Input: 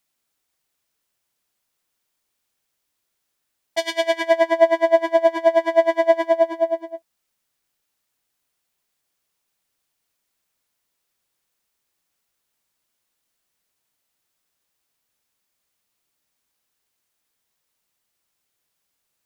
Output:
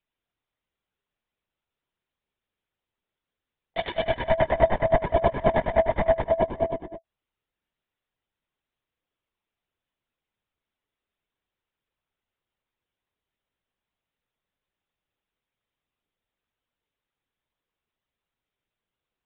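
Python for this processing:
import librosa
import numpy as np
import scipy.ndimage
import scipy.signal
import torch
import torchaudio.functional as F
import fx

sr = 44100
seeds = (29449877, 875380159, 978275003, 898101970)

y = fx.low_shelf(x, sr, hz=470.0, db=6.5)
y = fx.lpc_vocoder(y, sr, seeds[0], excitation='whisper', order=16)
y = y * 10.0 ** (-7.0 / 20.0)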